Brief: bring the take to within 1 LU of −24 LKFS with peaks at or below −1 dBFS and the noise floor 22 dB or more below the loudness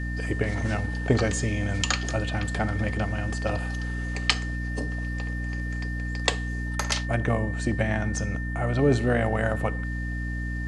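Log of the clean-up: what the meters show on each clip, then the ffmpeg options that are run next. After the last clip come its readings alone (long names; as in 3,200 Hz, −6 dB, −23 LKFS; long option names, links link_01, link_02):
mains hum 60 Hz; hum harmonics up to 300 Hz; level of the hum −28 dBFS; interfering tone 1,800 Hz; level of the tone −36 dBFS; integrated loudness −27.5 LKFS; sample peak −2.5 dBFS; target loudness −24.0 LKFS
→ -af "bandreject=frequency=60:width_type=h:width=6,bandreject=frequency=120:width_type=h:width=6,bandreject=frequency=180:width_type=h:width=6,bandreject=frequency=240:width_type=h:width=6,bandreject=frequency=300:width_type=h:width=6"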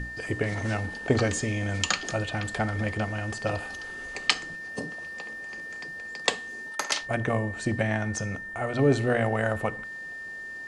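mains hum none found; interfering tone 1,800 Hz; level of the tone −36 dBFS
→ -af "bandreject=frequency=1800:width=30"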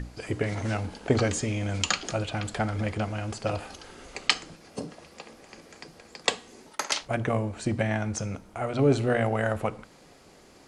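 interfering tone none found; integrated loudness −28.5 LKFS; sample peak −3.0 dBFS; target loudness −24.0 LKFS
→ -af "volume=4.5dB,alimiter=limit=-1dB:level=0:latency=1"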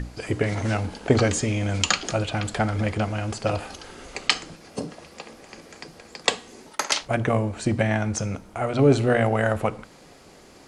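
integrated loudness −24.5 LKFS; sample peak −1.0 dBFS; background noise floor −50 dBFS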